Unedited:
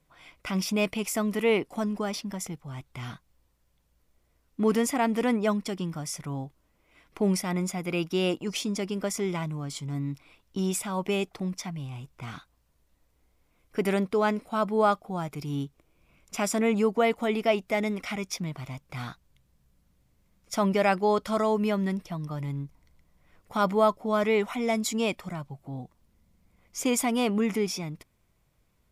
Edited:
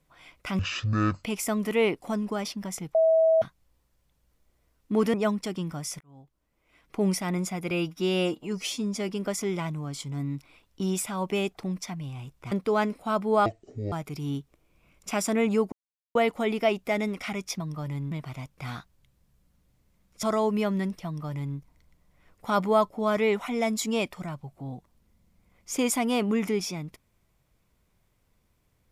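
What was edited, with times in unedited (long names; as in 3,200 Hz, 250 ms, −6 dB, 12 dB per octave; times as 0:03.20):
0:00.59–0:00.92: play speed 51%
0:02.63–0:03.10: beep over 647 Hz −17 dBFS
0:04.82–0:05.36: remove
0:06.23–0:07.31: fade in
0:07.93–0:08.85: time-stretch 1.5×
0:12.28–0:13.98: remove
0:14.92–0:15.18: play speed 56%
0:16.98: splice in silence 0.43 s
0:20.55–0:21.30: remove
0:22.13–0:22.64: duplicate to 0:18.43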